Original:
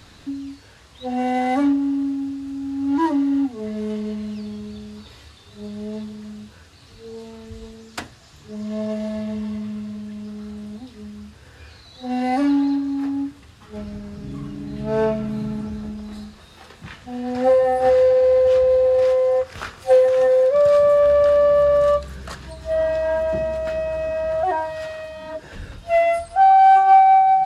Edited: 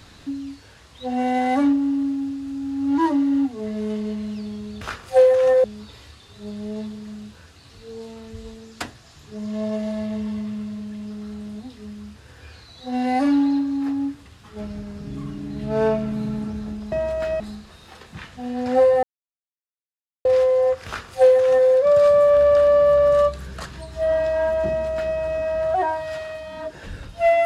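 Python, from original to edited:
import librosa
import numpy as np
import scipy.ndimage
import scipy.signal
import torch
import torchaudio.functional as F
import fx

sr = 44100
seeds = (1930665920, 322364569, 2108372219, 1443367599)

y = fx.edit(x, sr, fx.silence(start_s=17.72, length_s=1.22),
    fx.duplicate(start_s=19.55, length_s=0.83, to_s=4.81),
    fx.duplicate(start_s=23.37, length_s=0.48, to_s=16.09), tone=tone)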